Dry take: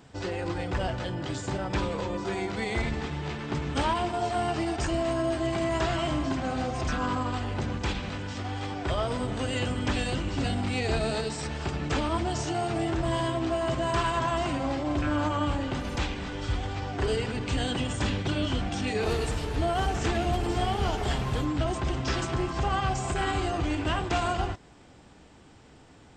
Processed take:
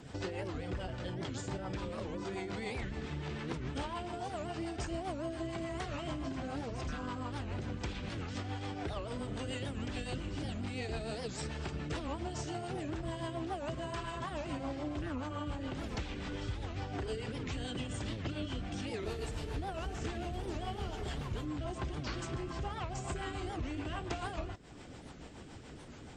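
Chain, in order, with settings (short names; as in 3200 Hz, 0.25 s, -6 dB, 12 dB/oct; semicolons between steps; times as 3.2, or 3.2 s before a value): compressor, threshold -40 dBFS, peak gain reduction 16 dB; rotary speaker horn 7 Hz; record warp 78 rpm, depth 250 cents; gain +5 dB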